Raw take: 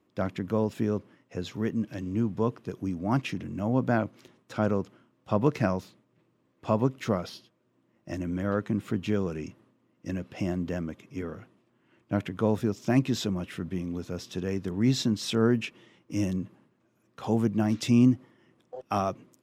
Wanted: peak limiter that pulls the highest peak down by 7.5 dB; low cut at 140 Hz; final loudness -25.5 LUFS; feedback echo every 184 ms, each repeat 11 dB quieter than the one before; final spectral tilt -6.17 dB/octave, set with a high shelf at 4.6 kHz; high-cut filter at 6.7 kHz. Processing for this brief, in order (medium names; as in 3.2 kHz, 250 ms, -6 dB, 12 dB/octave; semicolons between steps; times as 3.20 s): high-pass 140 Hz; low-pass 6.7 kHz; treble shelf 4.6 kHz -5 dB; peak limiter -18 dBFS; feedback delay 184 ms, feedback 28%, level -11 dB; trim +6 dB